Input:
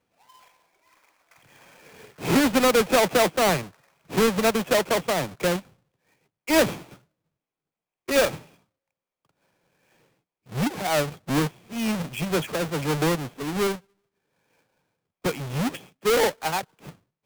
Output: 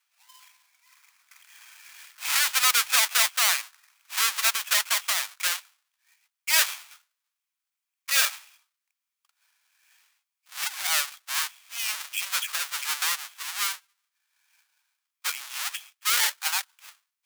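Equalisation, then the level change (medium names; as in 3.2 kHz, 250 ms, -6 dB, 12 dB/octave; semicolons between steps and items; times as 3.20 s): high-pass 1.1 kHz 24 dB/octave; treble shelf 2.6 kHz +10.5 dB; -2.0 dB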